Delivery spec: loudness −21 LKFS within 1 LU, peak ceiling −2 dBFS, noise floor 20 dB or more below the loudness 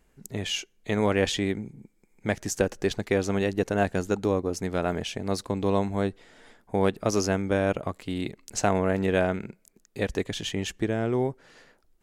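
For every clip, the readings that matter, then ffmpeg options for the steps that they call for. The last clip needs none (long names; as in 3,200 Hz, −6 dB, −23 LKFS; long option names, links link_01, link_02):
integrated loudness −27.5 LKFS; sample peak −9.0 dBFS; target loudness −21.0 LKFS
→ -af "volume=6.5dB"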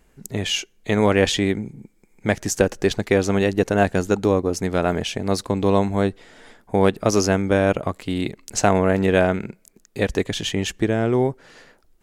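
integrated loudness −21.0 LKFS; sample peak −2.5 dBFS; background noise floor −59 dBFS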